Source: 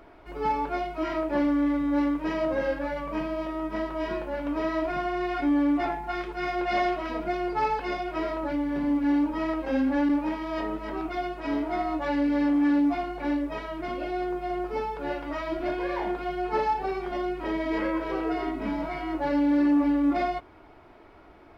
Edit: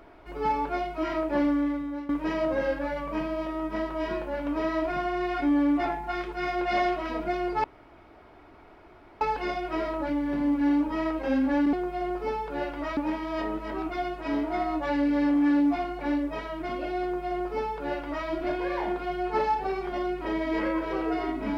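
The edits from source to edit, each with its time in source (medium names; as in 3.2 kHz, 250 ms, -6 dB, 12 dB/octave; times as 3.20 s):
1.48–2.09 s: fade out, to -17 dB
7.64 s: insert room tone 1.57 s
14.22–15.46 s: copy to 10.16 s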